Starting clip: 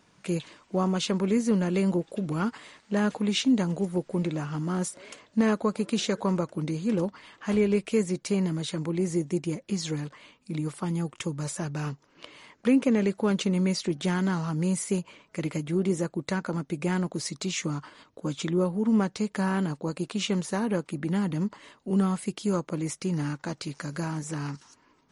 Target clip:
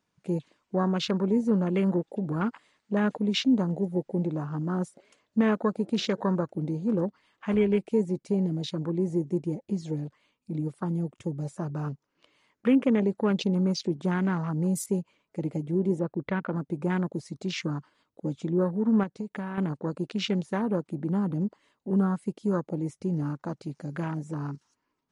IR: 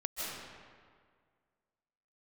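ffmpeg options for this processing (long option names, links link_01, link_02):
-filter_complex "[0:a]afwtdn=0.0141,asettb=1/sr,asplit=3[link_01][link_02][link_03];[link_01]atrim=end=15.994[link_04];[link_02]atrim=start=15.99:end=16.56,asetpts=PTS-STARTPTS,afade=type=in:duration=0.004:curve=qsin,afade=type=out:start_time=0.566:duration=0.004:curve=qsin,lowpass=frequency=4000:width=0.5412,lowpass=frequency=4000:width=1.3066[link_05];[link_03]atrim=start=16.556[link_06];[link_04][link_05]acrossfade=duration=0.004:curve1=hsin:curve2=qsin[link_07];[link_07][link_06]acrossfade=duration=0.004:curve1=qsin:curve2=hsin,asettb=1/sr,asplit=3[link_08][link_09][link_10];[link_08]atrim=end=19.034[link_11];[link_09]atrim=start=19.03:end=19.58,asetpts=PTS-STARTPTS,afade=type=in:duration=0.004:curve=qsin,afade=type=out:start_time=0.546:duration=0.004:curve=qsin,acompressor=threshold=-31dB:ratio=6[link_12];[link_10]atrim=start=19.576[link_13];[link_11][link_12]acrossfade=duration=0.004:curve1=hsin:curve2=qsin[link_14];[link_14][link_13]acrossfade=duration=0.004:curve1=qsin:curve2=hsin"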